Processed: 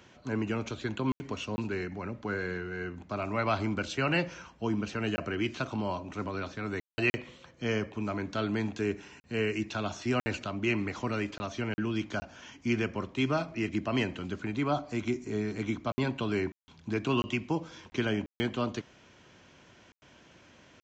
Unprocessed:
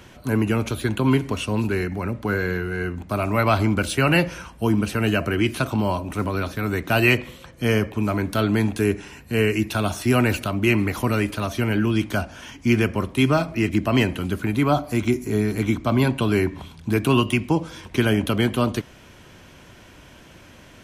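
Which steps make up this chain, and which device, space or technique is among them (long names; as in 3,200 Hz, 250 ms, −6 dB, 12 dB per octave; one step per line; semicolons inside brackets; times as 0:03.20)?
call with lost packets (high-pass filter 140 Hz 6 dB per octave; downsampling to 16,000 Hz; dropped packets of 20 ms bursts)
level −9 dB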